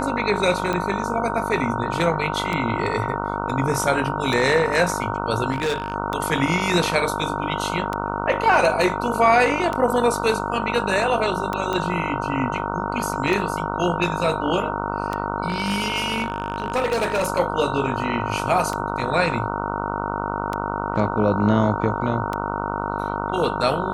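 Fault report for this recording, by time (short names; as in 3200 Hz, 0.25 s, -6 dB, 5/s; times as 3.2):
buzz 50 Hz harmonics 30 -27 dBFS
tick 33 1/3 rpm -11 dBFS
tone 930 Hz -29 dBFS
5.52–5.94 clipped -19 dBFS
11.73 pop -12 dBFS
15.48–17.28 clipped -17 dBFS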